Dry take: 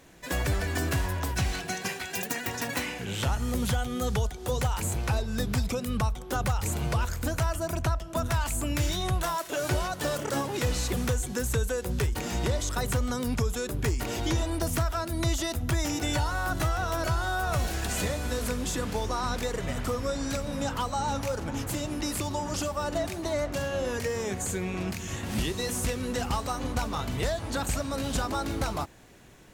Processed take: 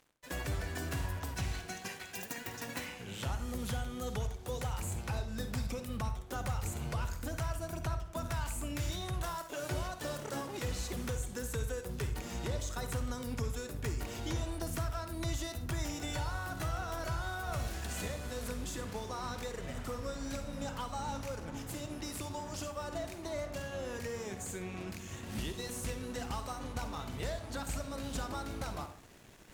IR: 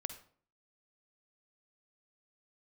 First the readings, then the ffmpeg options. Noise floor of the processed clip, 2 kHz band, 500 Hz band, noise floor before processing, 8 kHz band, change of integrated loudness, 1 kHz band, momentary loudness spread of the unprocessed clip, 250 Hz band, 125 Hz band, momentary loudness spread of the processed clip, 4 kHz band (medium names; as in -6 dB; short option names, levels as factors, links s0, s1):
-48 dBFS, -9.5 dB, -9.5 dB, -40 dBFS, -9.5 dB, -9.0 dB, -9.5 dB, 3 LU, -9.5 dB, -8.5 dB, 4 LU, -9.5 dB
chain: -filter_complex "[0:a]areverse,acompressor=mode=upward:threshold=0.0251:ratio=2.5,areverse,aeval=exprs='sgn(val(0))*max(abs(val(0))-0.00531,0)':c=same[s0];[1:a]atrim=start_sample=2205[s1];[s0][s1]afir=irnorm=-1:irlink=0,volume=0.447"